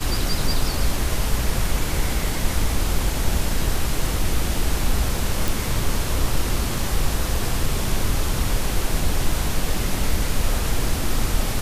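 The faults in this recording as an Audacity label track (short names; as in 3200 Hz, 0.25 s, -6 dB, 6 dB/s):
5.480000	5.480000	pop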